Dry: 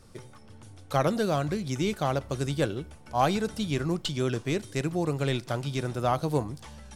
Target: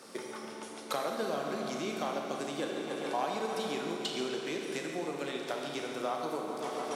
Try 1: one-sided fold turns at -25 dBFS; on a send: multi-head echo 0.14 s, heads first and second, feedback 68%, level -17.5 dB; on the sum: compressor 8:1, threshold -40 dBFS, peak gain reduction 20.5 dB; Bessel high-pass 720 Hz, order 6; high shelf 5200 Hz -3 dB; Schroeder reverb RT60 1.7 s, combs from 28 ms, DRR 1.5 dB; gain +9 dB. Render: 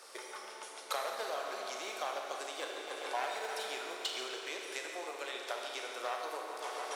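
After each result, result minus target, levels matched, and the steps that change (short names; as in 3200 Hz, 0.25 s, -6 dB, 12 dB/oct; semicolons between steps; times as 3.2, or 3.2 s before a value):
250 Hz band -13.0 dB; one-sided fold: distortion +19 dB
change: Bessel high-pass 330 Hz, order 6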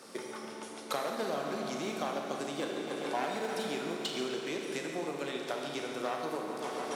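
one-sided fold: distortion +19 dB
change: one-sided fold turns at -16.5 dBFS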